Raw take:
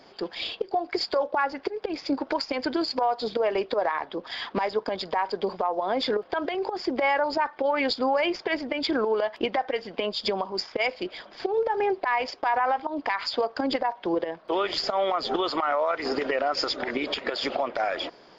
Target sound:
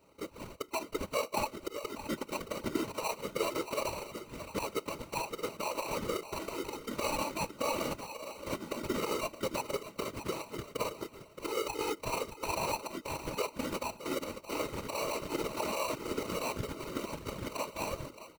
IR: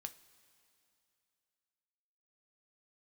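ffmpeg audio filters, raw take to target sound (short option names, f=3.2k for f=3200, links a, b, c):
-filter_complex "[0:a]asplit=3[a][b][c];[a]afade=t=out:st=8:d=0.02[d];[b]asplit=3[e][f][g];[e]bandpass=f=730:t=q:w=8,volume=0dB[h];[f]bandpass=f=1.09k:t=q:w=8,volume=-6dB[i];[g]bandpass=f=2.44k:t=q:w=8,volume=-9dB[j];[h][i][j]amix=inputs=3:normalize=0,afade=t=in:st=8:d=0.02,afade=t=out:st=8.46:d=0.02[k];[c]afade=t=in:st=8.46:d=0.02[l];[d][k][l]amix=inputs=3:normalize=0,acrusher=samples=26:mix=1:aa=0.000001,asplit=2[m][n];[n]aecho=0:1:621|1242|1863:0.316|0.0727|0.0167[o];[m][o]amix=inputs=2:normalize=0,afftfilt=real='hypot(re,im)*cos(2*PI*random(0))':imag='hypot(re,im)*sin(2*PI*random(1))':win_size=512:overlap=0.75,asplit=2[p][q];[q]aeval=exprs='sgn(val(0))*max(abs(val(0))-0.0211,0)':c=same,volume=-4dB[r];[p][r]amix=inputs=2:normalize=0,asuperstop=centerf=740:order=4:qfactor=5.7,volume=-5.5dB"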